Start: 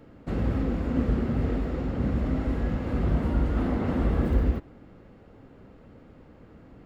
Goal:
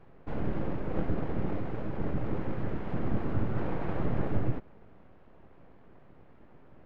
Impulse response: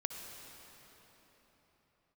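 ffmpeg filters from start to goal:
-af "aeval=exprs='abs(val(0))':c=same,bass=f=250:g=2,treble=f=4000:g=-15,volume=0.631"

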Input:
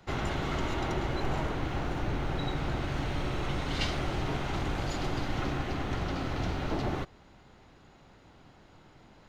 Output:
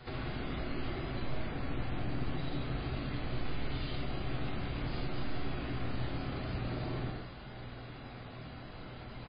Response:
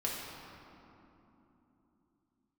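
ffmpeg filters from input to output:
-filter_complex "[0:a]asplit=2[s0][s1];[s1]aeval=exprs='(mod(22.4*val(0)+1,2)-1)/22.4':c=same,volume=0.562[s2];[s0][s2]amix=inputs=2:normalize=0,aemphasis=mode=production:type=50kf,asplit=2[s3][s4];[s4]adelay=49,volume=0.316[s5];[s3][s5]amix=inputs=2:normalize=0,alimiter=limit=0.126:level=0:latency=1:release=31,aeval=exprs='val(0)+0.00126*(sin(2*PI*60*n/s)+sin(2*PI*2*60*n/s)/2+sin(2*PI*3*60*n/s)/3+sin(2*PI*4*60*n/s)/4+sin(2*PI*5*60*n/s)/5)':c=same,bandreject=f=930:w=10,aresample=11025,volume=39.8,asoftclip=hard,volume=0.0251,aresample=44100,acompressor=threshold=0.0112:ratio=5[s6];[1:a]atrim=start_sample=2205,afade=t=out:st=0.17:d=0.01,atrim=end_sample=7938,asetrate=24255,aresample=44100[s7];[s6][s7]afir=irnorm=-1:irlink=0,acrossover=split=360[s8][s9];[s9]acompressor=threshold=0.00794:ratio=2.5[s10];[s8][s10]amix=inputs=2:normalize=0,volume=0.75" -ar 11025 -c:a libmp3lame -b:a 16k

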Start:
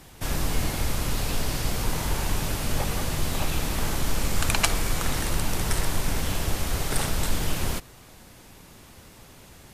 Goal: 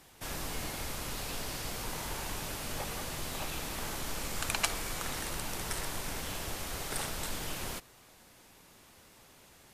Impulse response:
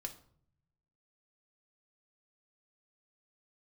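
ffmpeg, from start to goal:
-af "lowshelf=f=230:g=-9.5,volume=0.447"

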